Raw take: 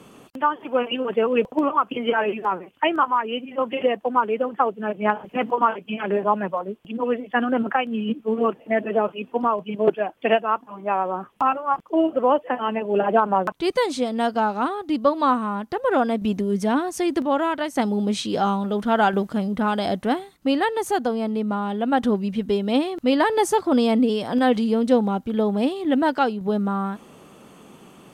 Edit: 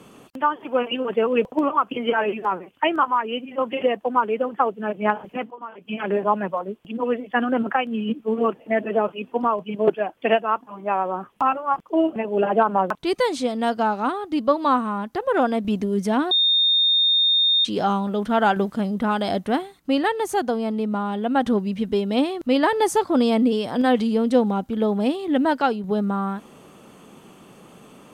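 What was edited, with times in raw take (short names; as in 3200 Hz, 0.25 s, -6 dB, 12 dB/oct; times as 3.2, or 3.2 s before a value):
5.28–5.95 dip -17 dB, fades 0.24 s
12.16–12.73 cut
16.88–18.22 bleep 3660 Hz -15 dBFS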